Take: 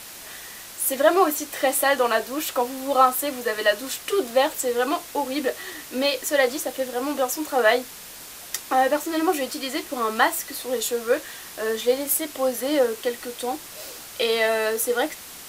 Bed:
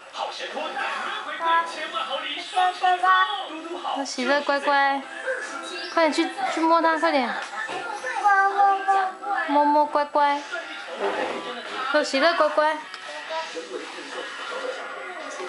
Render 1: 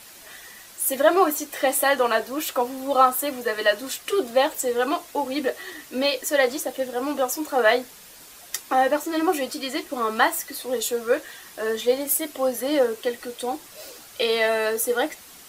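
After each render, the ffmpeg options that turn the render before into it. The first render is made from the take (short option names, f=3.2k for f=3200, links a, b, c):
-af "afftdn=nr=7:nf=-41"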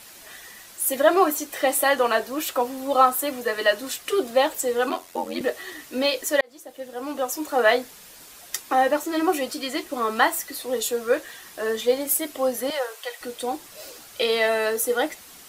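-filter_complex "[0:a]asettb=1/sr,asplit=3[a][b][c];[a]atrim=end=4.894[d];[b]atrim=start=4.89:end=5.41,asetpts=PTS-STARTPTS,afade=t=in:d=0.004:c=qsin,afade=t=out:st=0.516:d=0.004:c=qsin,aeval=exprs='val(0)*sin(2*PI*44*n/s)':c=same[e];[c]atrim=start=5.406[f];[d][e]acrossfade=d=0.004:c1=hsin:c2=qsin[g];[g][f]acrossfade=d=0.004:c1=qsin:c2=hsin,asettb=1/sr,asplit=3[h][i][j];[h]atrim=end=12.704[k];[i]atrim=start=12.7:end=13.21,asetpts=PTS-STARTPTS,afade=t=in:d=0.004:c=qsin,afade=t=out:st=0.506:d=0.004:c=qsin,highpass=f=650:w=0.5412,highpass=f=650:w=1.3066[l];[j]atrim=start=13.206[m];[k][l]acrossfade=d=0.004:c1=hsin:c2=qsin[n];[n][m]acrossfade=d=0.004:c1=qsin:c2=hsin,asplit=2[o][p];[o]atrim=end=6.41,asetpts=PTS-STARTPTS,afade=t=out:st=6.406:d=0.004:c=hsin[q];[p]atrim=start=6.41,asetpts=PTS-STARTPTS,afade=t=in:d=1.13[r];[q][r]concat=n=2:v=0:a=1"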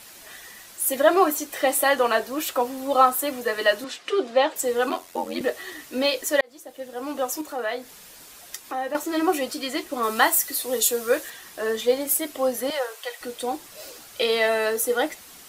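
-filter_complex "[0:a]asettb=1/sr,asplit=3[a][b][c];[a]atrim=end=3.844[d];[b]atrim=start=3.84:end=4.56,asetpts=PTS-STARTPTS,afade=t=in:d=0.004:c=qsin,afade=t=out:st=0.716:d=0.004:c=qsin,highpass=220,lowpass=4.8k[e];[c]atrim=start=4.556[f];[d][e]acrossfade=d=0.004:c1=hsin:c2=qsin[g];[g][f]acrossfade=d=0.004:c1=qsin:c2=hsin,asettb=1/sr,asplit=3[h][i][j];[h]atrim=end=7.414[k];[i]atrim=start=7.41:end=8.95,asetpts=PTS-STARTPTS,afade=t=in:d=0.004:c=qsin,afade=t=out:st=1.536:d=0.004:c=qsin,acompressor=threshold=-41dB:ratio=1.5:attack=3.2:release=140:knee=1:detection=peak[l];[j]atrim=start=8.946[m];[k][l]acrossfade=d=0.004:c1=hsin:c2=qsin[n];[n][m]acrossfade=d=0.004:c1=qsin:c2=hsin,asettb=1/sr,asplit=3[o][p][q];[o]atrim=end=10.034[r];[p]atrim=start=10.03:end=11.3,asetpts=PTS-STARTPTS,afade=t=in:d=0.004:c=qsin,afade=t=out:st=1.266:d=0.004:c=qsin,aemphasis=mode=production:type=cd[s];[q]atrim=start=11.296[t];[r][s]acrossfade=d=0.004:c1=hsin:c2=qsin[u];[u][t]acrossfade=d=0.004:c1=qsin:c2=hsin"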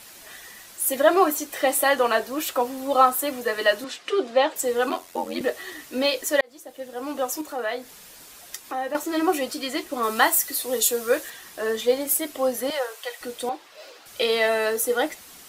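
-filter_complex "[0:a]asettb=1/sr,asplit=3[a][b][c];[a]atrim=end=13.494[d];[b]atrim=start=13.49:end=14.06,asetpts=PTS-STARTPTS,afade=t=in:d=0.004:c=qsin,afade=t=out:st=0.566:d=0.004:c=qsin,acrossover=split=360 4800:gain=0.126 1 0.158[e][f][g];[e][f][g]amix=inputs=3:normalize=0[h];[c]atrim=start=14.056[i];[d][h]acrossfade=d=0.004:c1=hsin:c2=qsin[j];[j][i]acrossfade=d=0.004:c1=qsin:c2=hsin"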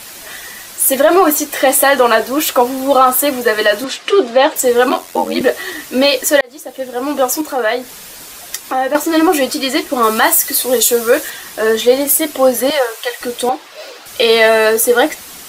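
-af "acontrast=29,alimiter=level_in=7.5dB:limit=-1dB:release=50:level=0:latency=1"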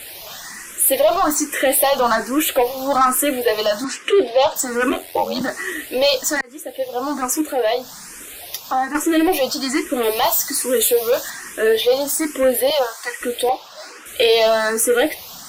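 -filter_complex "[0:a]asoftclip=type=tanh:threshold=-8dB,asplit=2[a][b];[b]afreqshift=1.2[c];[a][c]amix=inputs=2:normalize=1"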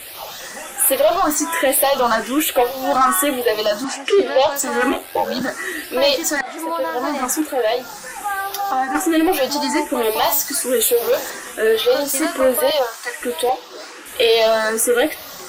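-filter_complex "[1:a]volume=-5.5dB[a];[0:a][a]amix=inputs=2:normalize=0"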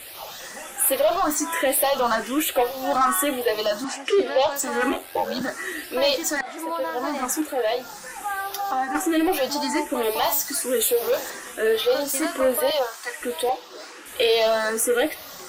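-af "volume=-5dB"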